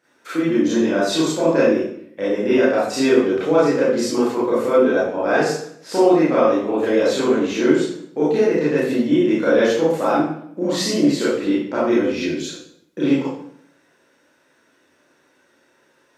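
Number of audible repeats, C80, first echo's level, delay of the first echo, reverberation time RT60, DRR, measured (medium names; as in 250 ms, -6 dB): no echo, 4.5 dB, no echo, no echo, 0.65 s, -10.5 dB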